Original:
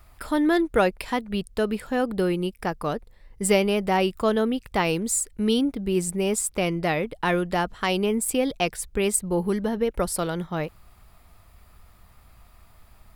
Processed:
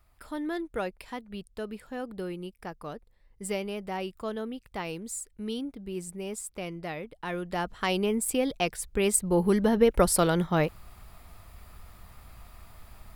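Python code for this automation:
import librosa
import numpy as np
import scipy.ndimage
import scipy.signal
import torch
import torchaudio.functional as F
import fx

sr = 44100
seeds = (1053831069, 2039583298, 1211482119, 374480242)

y = fx.gain(x, sr, db=fx.line((7.24, -12.0), (7.77, -3.5), (8.81, -3.5), (9.83, 3.5)))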